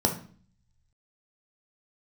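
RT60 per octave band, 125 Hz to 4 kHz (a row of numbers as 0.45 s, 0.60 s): 1.3 s, 0.75 s, 0.45 s, 0.45 s, 0.40 s, 0.40 s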